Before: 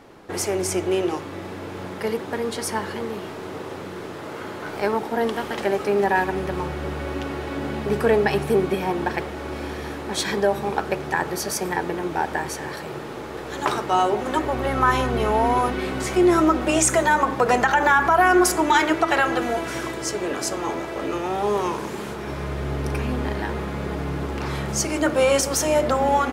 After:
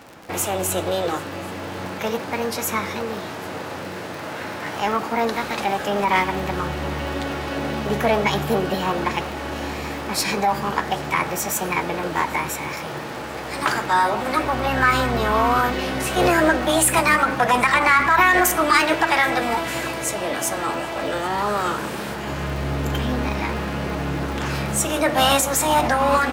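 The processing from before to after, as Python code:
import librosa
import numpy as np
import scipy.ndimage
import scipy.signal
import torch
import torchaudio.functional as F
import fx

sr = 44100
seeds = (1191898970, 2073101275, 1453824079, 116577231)

p1 = scipy.signal.sosfilt(scipy.signal.butter(2, 56.0, 'highpass', fs=sr, output='sos'), x)
p2 = fx.peak_eq(p1, sr, hz=400.0, db=-8.0, octaves=0.3)
p3 = fx.formant_shift(p2, sr, semitones=4)
p4 = 10.0 ** (-23.5 / 20.0) * np.tanh(p3 / 10.0 ** (-23.5 / 20.0))
p5 = p3 + (p4 * librosa.db_to_amplitude(-4.5))
p6 = fx.dmg_crackle(p5, sr, seeds[0], per_s=53.0, level_db=-30.0)
y = p6 + fx.echo_single(p6, sr, ms=782, db=-23.5, dry=0)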